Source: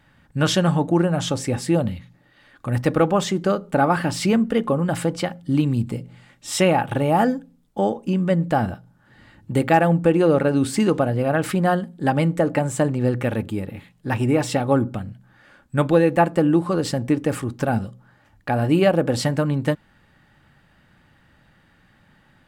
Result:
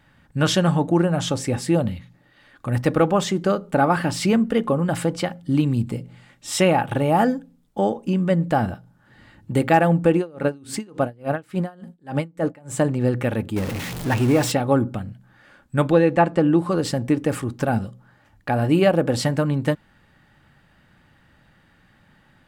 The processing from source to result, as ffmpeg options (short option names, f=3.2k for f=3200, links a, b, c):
-filter_complex "[0:a]asettb=1/sr,asplit=3[a][b][c];[a]atrim=end=10.174[d];[b]atrim=start=10.17:end=12.77,asetpts=PTS-STARTPTS,afade=t=in:d=0.004:c=qsin,afade=t=out:st=2.596:d=0.004:c=qsin,aeval=exprs='val(0)*pow(10,-29*(0.5-0.5*cos(2*PI*3.5*n/s))/20)':c=same[e];[c]atrim=start=12.766[f];[d][e]acrossfade=d=0.004:c1=hsin:c2=qsin[g];[g][f]acrossfade=d=0.004:c1=qsin:c2=hsin,asettb=1/sr,asplit=3[h][i][j];[h]atrim=end=13.564[k];[i]atrim=start=13.56:end=14.52,asetpts=PTS-STARTPTS,afade=t=in:d=0.004:c=qsin,afade=t=out:st=0.956:d=0.004:c=qsin,aeval=exprs='val(0)+0.5*0.0562*sgn(val(0))':c=same[l];[j]atrim=start=14.516[m];[k][l]acrossfade=d=0.004:c1=hsin:c2=qsin[n];[n][m]acrossfade=d=0.004:c1=qsin:c2=hsin,asettb=1/sr,asplit=3[o][p][q];[o]atrim=end=15.924[r];[p]atrim=start=15.92:end=16.59,asetpts=PTS-STARTPTS,afade=t=in:d=0.004:c=qsin,afade=t=out:st=0.666:d=0.004:c=qsin,lowpass=6.3k[s];[q]atrim=start=16.586[t];[r][s]acrossfade=d=0.004:c1=hsin:c2=qsin[u];[u][t]acrossfade=d=0.004:c1=qsin:c2=hsin"